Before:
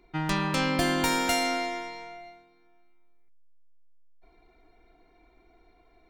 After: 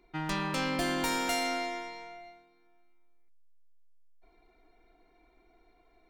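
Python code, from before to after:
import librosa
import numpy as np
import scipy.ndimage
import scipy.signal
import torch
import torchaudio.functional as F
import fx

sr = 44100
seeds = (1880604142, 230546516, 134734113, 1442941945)

p1 = fx.peak_eq(x, sr, hz=89.0, db=-11.5, octaves=0.91)
p2 = 10.0 ** (-25.0 / 20.0) * (np.abs((p1 / 10.0 ** (-25.0 / 20.0) + 3.0) % 4.0 - 2.0) - 1.0)
p3 = p1 + F.gain(torch.from_numpy(p2), -9.0).numpy()
y = F.gain(torch.from_numpy(p3), -6.0).numpy()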